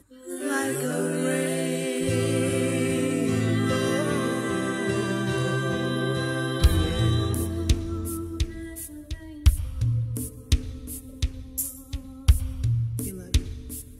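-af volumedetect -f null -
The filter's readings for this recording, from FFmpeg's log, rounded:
mean_volume: -25.6 dB
max_volume: -5.6 dB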